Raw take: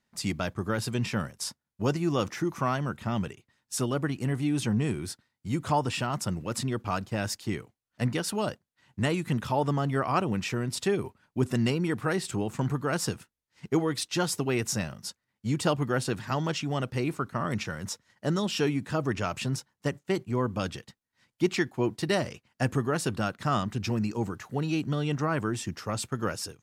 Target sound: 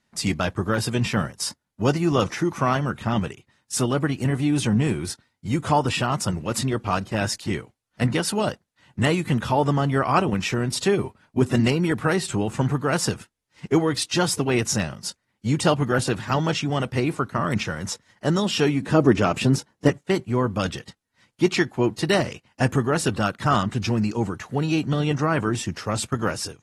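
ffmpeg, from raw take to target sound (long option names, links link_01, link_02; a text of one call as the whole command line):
ffmpeg -i in.wav -filter_complex "[0:a]asettb=1/sr,asplit=3[link_01][link_02][link_03];[link_01]atrim=end=18.824[link_04];[link_02]atrim=start=18.82:end=19.89,asetpts=PTS-STARTPTS,afade=type=in:duration=0.004:curve=qsin,afade=type=out:start_time=1.066:duration=0.004:curve=qsin,equalizer=frequency=310:width_type=o:width=2:gain=8.5[link_05];[link_03]atrim=start=19.886[link_06];[link_04][link_05]acrossfade=duration=0.004:curve1=hsin:curve2=qsin[link_07];[link_07][link_06]acrossfade=duration=0.004:curve1=qsin:curve2=hsin,volume=6dB" -ar 48000 -c:a aac -b:a 32k out.aac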